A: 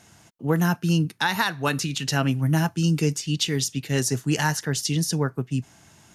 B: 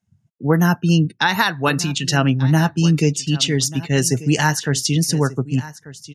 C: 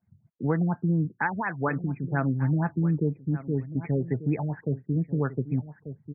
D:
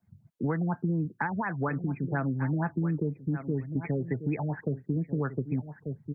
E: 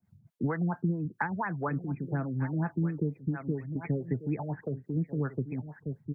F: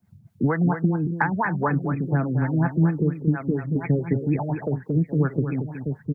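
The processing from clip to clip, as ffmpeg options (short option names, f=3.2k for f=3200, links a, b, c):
-af "afftdn=nr=36:nf=-40,aecho=1:1:1189:0.133,volume=6dB"
-af "acompressor=threshold=-29dB:ratio=2,afftfilt=real='re*lt(b*sr/1024,590*pow(2600/590,0.5+0.5*sin(2*PI*4.2*pts/sr)))':imag='im*lt(b*sr/1024,590*pow(2600/590,0.5+0.5*sin(2*PI*4.2*pts/sr)))':win_size=1024:overlap=0.75"
-filter_complex "[0:a]acrossover=split=230|1400[a][b][c];[a]acompressor=threshold=-36dB:ratio=4[d];[b]acompressor=threshold=-35dB:ratio=4[e];[c]acompressor=threshold=-42dB:ratio=4[f];[d][e][f]amix=inputs=3:normalize=0,volume=3.5dB"
-filter_complex "[0:a]acrossover=split=420[a][b];[a]aeval=exprs='val(0)*(1-0.7/2+0.7/2*cos(2*PI*4.6*n/s))':c=same[c];[b]aeval=exprs='val(0)*(1-0.7/2-0.7/2*cos(2*PI*4.6*n/s))':c=same[d];[c][d]amix=inputs=2:normalize=0,volume=1.5dB"
-af "aecho=1:1:229:0.398,volume=8.5dB"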